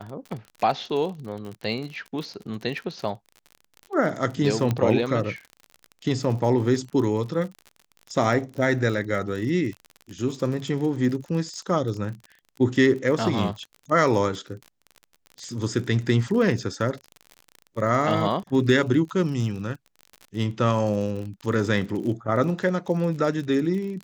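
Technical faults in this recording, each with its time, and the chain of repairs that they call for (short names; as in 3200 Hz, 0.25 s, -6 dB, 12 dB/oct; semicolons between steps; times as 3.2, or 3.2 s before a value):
crackle 45/s -32 dBFS
4.71 pop -12 dBFS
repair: de-click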